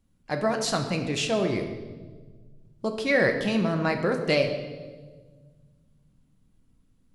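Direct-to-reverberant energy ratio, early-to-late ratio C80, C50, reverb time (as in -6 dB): 3.5 dB, 9.0 dB, 7.5 dB, 1.5 s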